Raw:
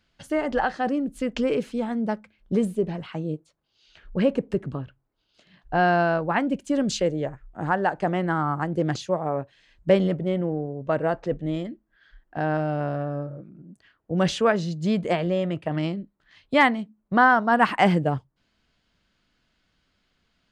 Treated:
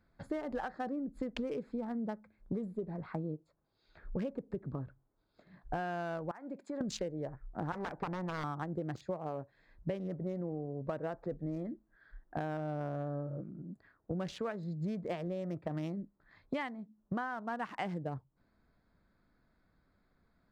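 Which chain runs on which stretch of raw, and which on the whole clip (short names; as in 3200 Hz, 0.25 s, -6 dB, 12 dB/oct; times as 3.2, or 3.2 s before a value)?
6.31–6.81 weighting filter A + compressor 5:1, threshold -36 dBFS
7.72–8.44 self-modulated delay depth 1 ms + de-esser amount 70% + air absorption 170 m
whole clip: Wiener smoothing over 15 samples; compressor 16:1, threshold -34 dBFS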